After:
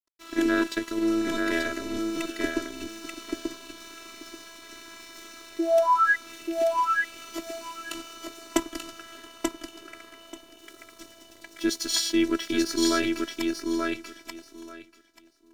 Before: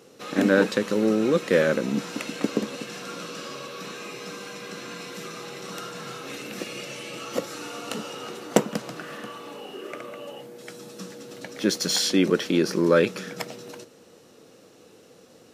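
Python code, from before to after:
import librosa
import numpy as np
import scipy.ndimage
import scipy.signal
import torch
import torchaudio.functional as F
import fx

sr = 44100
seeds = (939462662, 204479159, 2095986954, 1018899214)

p1 = fx.peak_eq(x, sr, hz=600.0, db=-10.5, octaves=0.68)
p2 = fx.level_steps(p1, sr, step_db=12)
p3 = p1 + F.gain(torch.from_numpy(p2), -2.5).numpy()
p4 = np.sign(p3) * np.maximum(np.abs(p3) - 10.0 ** (-42.0 / 20.0), 0.0)
p5 = fx.spec_paint(p4, sr, seeds[0], shape='rise', start_s=5.59, length_s=0.57, low_hz=410.0, high_hz=1900.0, level_db=-15.0)
p6 = fx.robotise(p5, sr, hz=332.0)
p7 = p6 + fx.echo_feedback(p6, sr, ms=885, feedback_pct=17, wet_db=-3.5, dry=0)
y = F.gain(torch.from_numpy(p7), -2.5).numpy()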